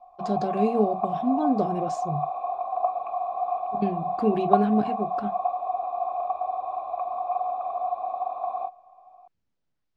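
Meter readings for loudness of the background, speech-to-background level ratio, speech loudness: -29.0 LUFS, 2.0 dB, -27.0 LUFS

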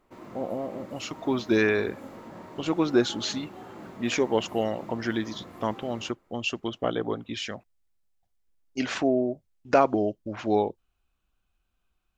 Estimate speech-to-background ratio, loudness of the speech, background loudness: 16.5 dB, -28.0 LUFS, -44.5 LUFS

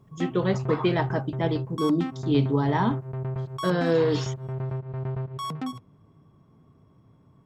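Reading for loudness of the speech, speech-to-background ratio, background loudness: -26.0 LUFS, 6.5 dB, -32.5 LUFS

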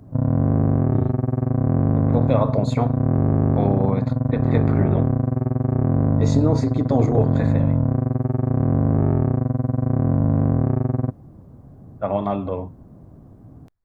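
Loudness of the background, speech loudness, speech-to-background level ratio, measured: -20.5 LUFS, -25.5 LUFS, -5.0 dB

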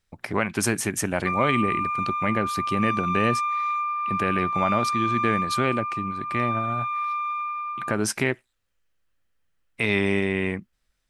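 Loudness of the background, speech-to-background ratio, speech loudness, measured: -26.5 LUFS, 0.0 dB, -26.5 LUFS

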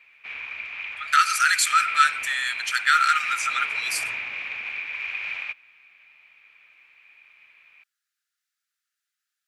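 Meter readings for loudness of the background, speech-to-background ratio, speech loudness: -29.0 LUFS, 7.5 dB, -21.5 LUFS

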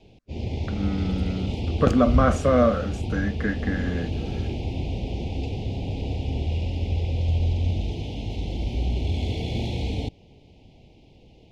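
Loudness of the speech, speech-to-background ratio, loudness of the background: -24.5 LUFS, 4.0 dB, -28.5 LUFS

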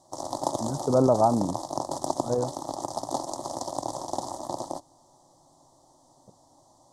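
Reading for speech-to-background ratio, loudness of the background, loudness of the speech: 8.0 dB, -33.5 LUFS, -25.5 LUFS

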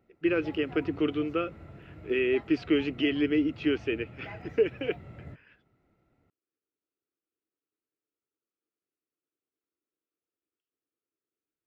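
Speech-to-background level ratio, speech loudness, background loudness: 17.5 dB, -29.0 LUFS, -46.5 LUFS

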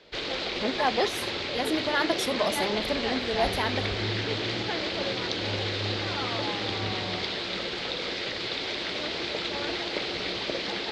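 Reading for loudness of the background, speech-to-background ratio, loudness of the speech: -29.5 LUFS, -0.5 dB, -30.0 LUFS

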